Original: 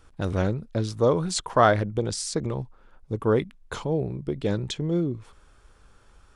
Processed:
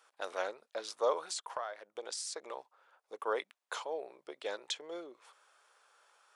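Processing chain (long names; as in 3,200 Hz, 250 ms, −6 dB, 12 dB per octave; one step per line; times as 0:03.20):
high-pass filter 570 Hz 24 dB per octave
0:01.26–0:02.50: downward compressor 8 to 1, threshold −33 dBFS, peak gain reduction 19 dB
level −4 dB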